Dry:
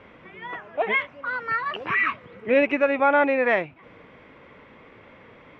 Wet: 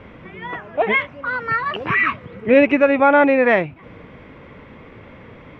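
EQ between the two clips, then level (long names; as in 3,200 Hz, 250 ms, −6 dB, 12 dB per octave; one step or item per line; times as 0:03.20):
low-shelf EQ 240 Hz +11 dB
+4.5 dB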